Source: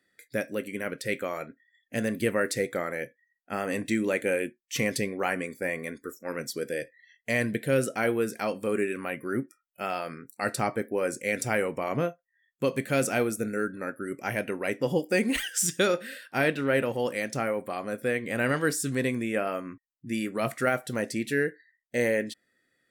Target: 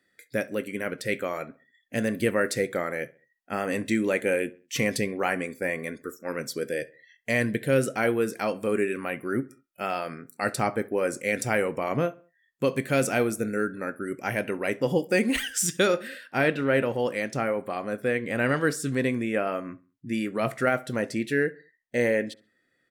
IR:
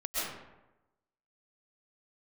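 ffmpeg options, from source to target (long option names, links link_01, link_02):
-filter_complex "[0:a]asetnsamples=nb_out_samples=441:pad=0,asendcmd='16.08 highshelf g -8.5',highshelf=frequency=5700:gain=-2.5,asplit=2[link_01][link_02];[link_02]adelay=67,lowpass=frequency=2500:poles=1,volume=-20.5dB,asplit=2[link_03][link_04];[link_04]adelay=67,lowpass=frequency=2500:poles=1,volume=0.42,asplit=2[link_05][link_06];[link_06]adelay=67,lowpass=frequency=2500:poles=1,volume=0.42[link_07];[link_01][link_03][link_05][link_07]amix=inputs=4:normalize=0,volume=2dB"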